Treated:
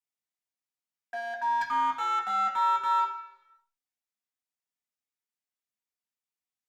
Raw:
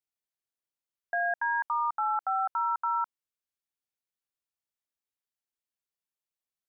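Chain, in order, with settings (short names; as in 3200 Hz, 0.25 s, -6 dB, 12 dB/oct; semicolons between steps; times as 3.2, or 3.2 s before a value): 1.61–3 bell 1700 Hz +11 dB 0.59 oct; one-sided clip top -25 dBFS, bottom -20.5 dBFS; reverb RT60 1.0 s, pre-delay 3 ms, DRR -3 dB; gain -5.5 dB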